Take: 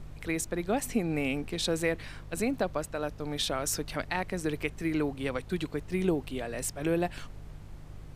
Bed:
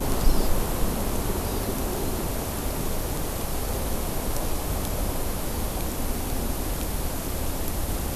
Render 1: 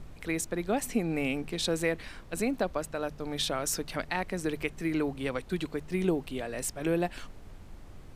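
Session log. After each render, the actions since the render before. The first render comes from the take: de-hum 50 Hz, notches 3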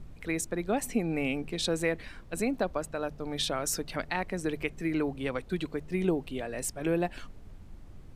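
noise reduction 6 dB, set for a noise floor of -48 dBFS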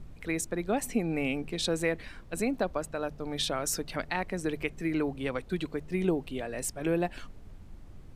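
no audible change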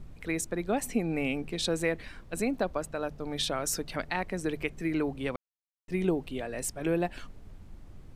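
5.36–5.88 s: mute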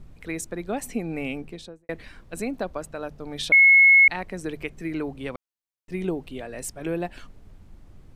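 1.33–1.89 s: studio fade out; 3.52–4.08 s: bleep 2.18 kHz -10.5 dBFS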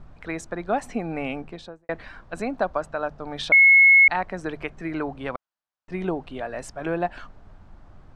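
low-pass 5.5 kHz 12 dB/octave; high-order bell 1 kHz +8.5 dB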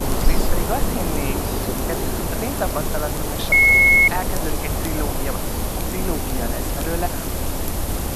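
add bed +4 dB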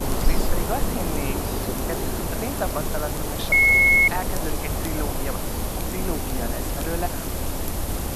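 trim -3 dB

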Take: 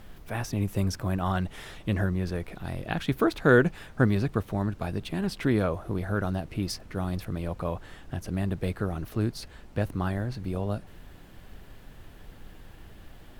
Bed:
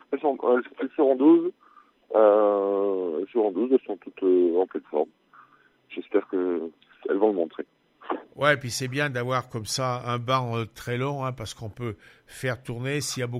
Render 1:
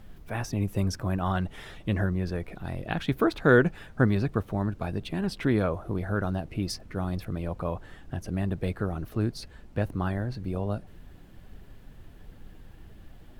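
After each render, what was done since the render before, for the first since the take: noise reduction 6 dB, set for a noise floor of -49 dBFS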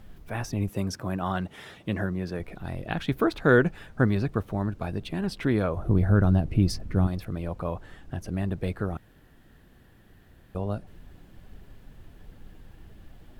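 0.69–2.40 s: high-pass 120 Hz; 5.77–7.07 s: bass shelf 290 Hz +12 dB; 8.97–10.55 s: room tone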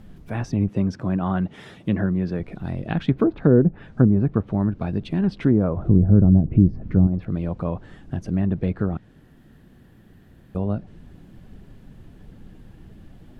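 low-pass that closes with the level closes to 540 Hz, closed at -18.5 dBFS; peaking EQ 190 Hz +9 dB 2.1 oct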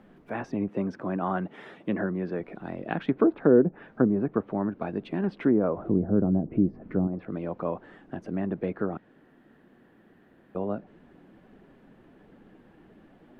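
three-band isolator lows -22 dB, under 230 Hz, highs -15 dB, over 2.6 kHz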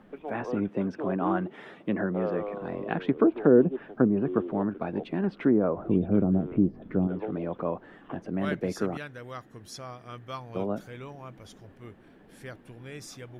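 add bed -14.5 dB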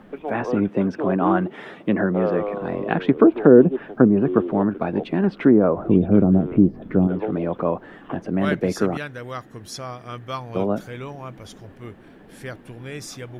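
trim +8 dB; peak limiter -1 dBFS, peak gain reduction 1 dB

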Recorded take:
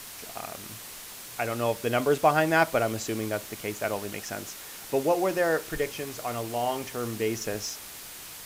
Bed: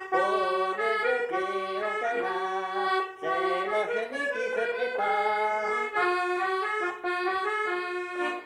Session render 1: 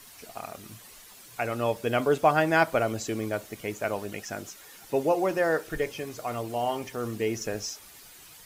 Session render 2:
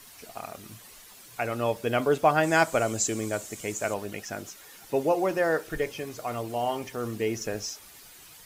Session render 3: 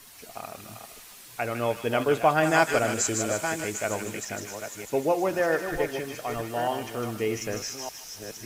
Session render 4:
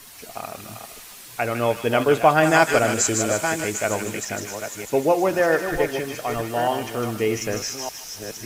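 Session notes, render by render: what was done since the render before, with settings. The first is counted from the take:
noise reduction 10 dB, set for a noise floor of -43 dBFS
2.43–3.94 s: peaking EQ 7.4 kHz +14 dB 0.68 oct
chunks repeated in reverse 607 ms, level -8 dB; feedback echo behind a high-pass 154 ms, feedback 54%, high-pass 1.7 kHz, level -4.5 dB
trim +5.5 dB; peak limiter -3 dBFS, peak gain reduction 2 dB

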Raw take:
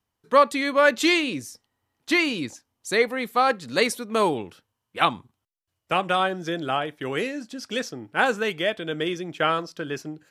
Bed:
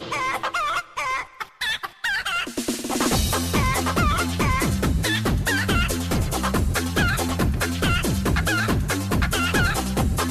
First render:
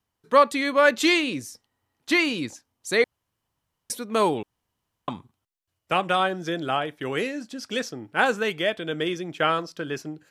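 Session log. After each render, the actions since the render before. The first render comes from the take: 3.04–3.90 s: room tone; 4.43–5.08 s: room tone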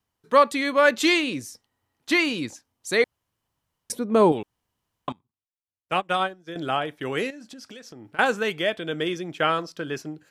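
3.92–4.32 s: tilt shelf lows +8 dB, about 1.1 kHz; 5.12–6.56 s: upward expansion 2.5:1, over -35 dBFS; 7.30–8.19 s: compression 20:1, threshold -38 dBFS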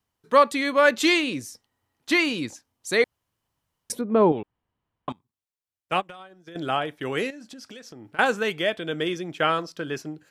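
4.01–5.09 s: distance through air 350 m; 6.05–6.55 s: compression 16:1, threshold -38 dBFS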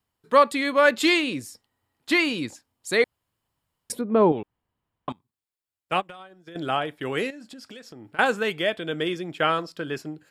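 band-stop 6 kHz, Q 7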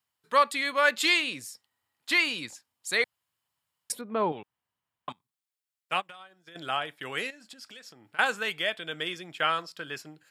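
high-pass 160 Hz 12 dB/octave; peaking EQ 310 Hz -13 dB 2.5 oct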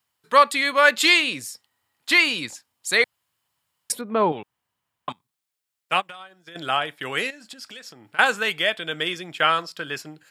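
trim +7 dB

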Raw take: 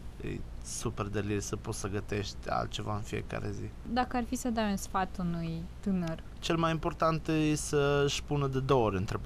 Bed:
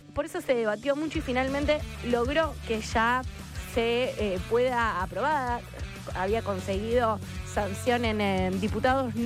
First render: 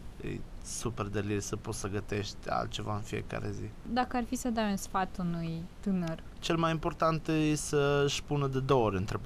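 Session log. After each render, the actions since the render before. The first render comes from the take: de-hum 60 Hz, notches 2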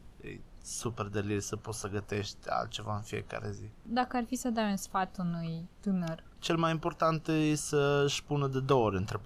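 noise print and reduce 8 dB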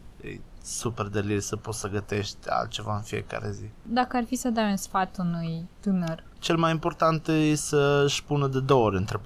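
trim +6 dB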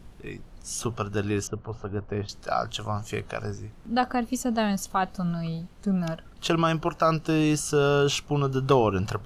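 1.47–2.29 s: tape spacing loss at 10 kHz 44 dB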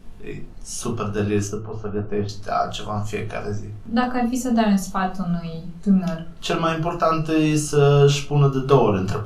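simulated room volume 180 m³, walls furnished, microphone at 1.5 m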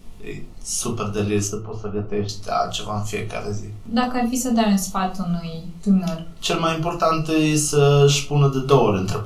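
treble shelf 2.9 kHz +7.5 dB; band-stop 1.6 kHz, Q 5.4

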